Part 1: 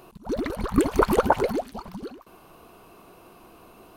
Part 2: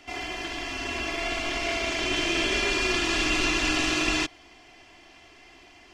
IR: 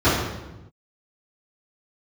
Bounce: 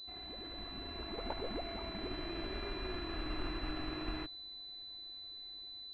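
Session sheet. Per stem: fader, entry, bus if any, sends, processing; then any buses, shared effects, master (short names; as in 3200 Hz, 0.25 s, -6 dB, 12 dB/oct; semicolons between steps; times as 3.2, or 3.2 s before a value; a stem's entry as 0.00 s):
1 s -23.5 dB -> 1.29 s -12 dB, 0.00 s, no send, compressor, threshold -26 dBFS, peak gain reduction 12.5 dB
-19.0 dB, 0.00 s, no send, low shelf 190 Hz +9 dB; AGC gain up to 3.5 dB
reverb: off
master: pulse-width modulation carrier 4000 Hz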